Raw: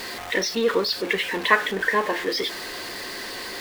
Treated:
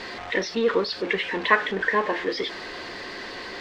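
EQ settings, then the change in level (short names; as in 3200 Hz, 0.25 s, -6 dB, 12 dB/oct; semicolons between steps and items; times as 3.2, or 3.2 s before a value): air absorption 150 m; 0.0 dB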